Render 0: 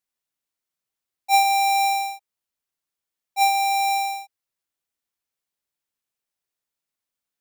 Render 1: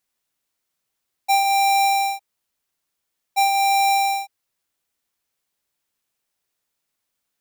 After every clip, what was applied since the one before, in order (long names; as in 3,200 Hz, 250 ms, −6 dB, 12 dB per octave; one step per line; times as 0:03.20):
downward compressor 6 to 1, threshold −26 dBFS, peak gain reduction 10.5 dB
level +8 dB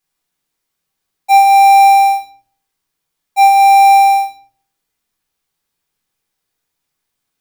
rectangular room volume 590 cubic metres, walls furnished, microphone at 3.9 metres
level −1 dB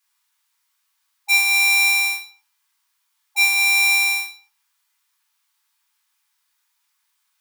linear-phase brick-wall high-pass 830 Hz
level +4.5 dB